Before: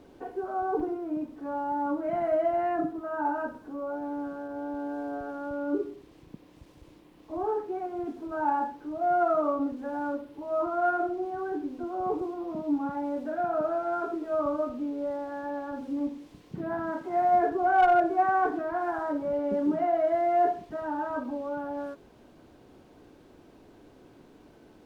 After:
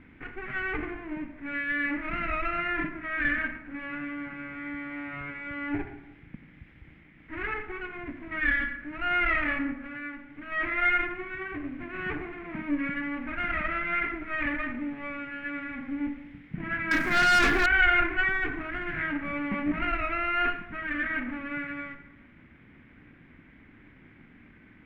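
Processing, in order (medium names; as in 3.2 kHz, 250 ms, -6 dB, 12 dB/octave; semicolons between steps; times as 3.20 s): comb filter that takes the minimum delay 0.57 ms; FFT filter 240 Hz 0 dB, 400 Hz -12 dB, 660 Hz -11 dB, 1.2 kHz -6 dB, 2.2 kHz +12 dB, 3.8 kHz -14 dB, 5.7 kHz -27 dB; 9.72–10.52 s: compression 4:1, threshold -41 dBFS, peak gain reduction 9 dB; reverberation RT60 1.0 s, pre-delay 32 ms, DRR 9 dB; 16.91–17.66 s: waveshaping leveller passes 3; 18.28–18.98 s: dynamic bell 1.9 kHz, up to -6 dB, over -39 dBFS, Q 0.93; trim +3.5 dB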